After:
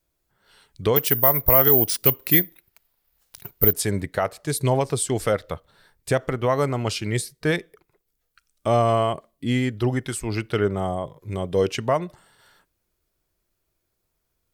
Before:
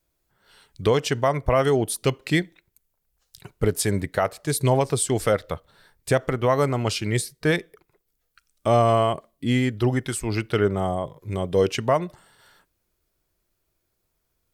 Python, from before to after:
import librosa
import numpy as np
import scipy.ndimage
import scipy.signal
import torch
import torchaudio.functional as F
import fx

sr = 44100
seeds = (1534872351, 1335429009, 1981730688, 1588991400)

y = fx.resample_bad(x, sr, factor=3, down='none', up='zero_stuff', at=(0.96, 3.73))
y = F.gain(torch.from_numpy(y), -1.0).numpy()